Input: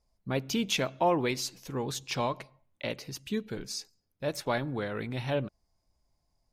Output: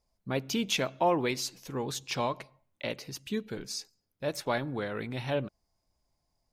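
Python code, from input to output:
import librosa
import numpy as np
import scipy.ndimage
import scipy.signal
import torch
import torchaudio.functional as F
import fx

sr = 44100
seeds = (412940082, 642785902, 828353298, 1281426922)

y = fx.low_shelf(x, sr, hz=110.0, db=-5.0)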